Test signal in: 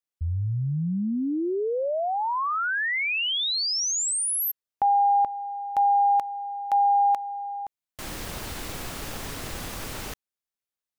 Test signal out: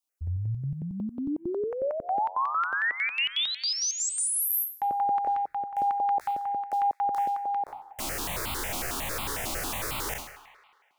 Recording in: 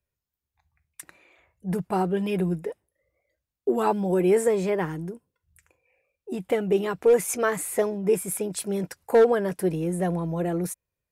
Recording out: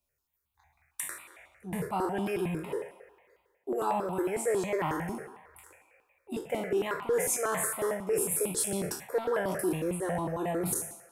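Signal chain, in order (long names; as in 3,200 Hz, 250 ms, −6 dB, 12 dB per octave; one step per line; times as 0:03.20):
peak hold with a decay on every bin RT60 0.59 s
low-shelf EQ 220 Hz −7.5 dB
reversed playback
downward compressor 6 to 1, threshold −30 dBFS
reversed playback
delay with a band-pass on its return 107 ms, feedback 65%, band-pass 1,500 Hz, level −10 dB
step-sequenced phaser 11 Hz 460–1,700 Hz
level +5.5 dB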